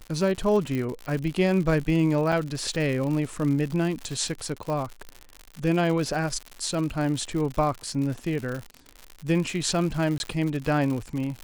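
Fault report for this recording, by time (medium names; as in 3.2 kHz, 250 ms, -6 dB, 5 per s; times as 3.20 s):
crackle 120 per s -30 dBFS
0.75 s: pop -18 dBFS
2.32 s: dropout 4.3 ms
4.70 s: pop -20 dBFS
10.18–10.20 s: dropout 21 ms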